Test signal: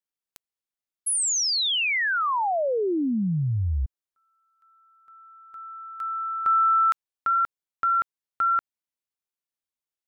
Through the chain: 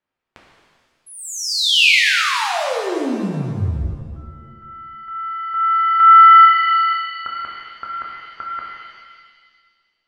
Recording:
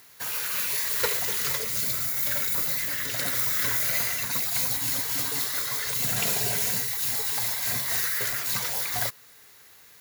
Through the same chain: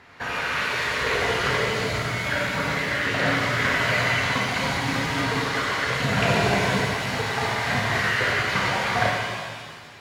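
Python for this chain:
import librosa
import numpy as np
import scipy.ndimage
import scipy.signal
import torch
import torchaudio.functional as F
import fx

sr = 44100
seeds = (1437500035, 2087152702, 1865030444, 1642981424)

y = scipy.signal.sosfilt(scipy.signal.butter(2, 2000.0, 'lowpass', fs=sr, output='sos'), x)
y = fx.over_compress(y, sr, threshold_db=-30.0, ratio=-0.5)
y = fx.rev_shimmer(y, sr, seeds[0], rt60_s=1.7, semitones=7, shimmer_db=-8, drr_db=-2.5)
y = y * 10.0 ** (9.0 / 20.0)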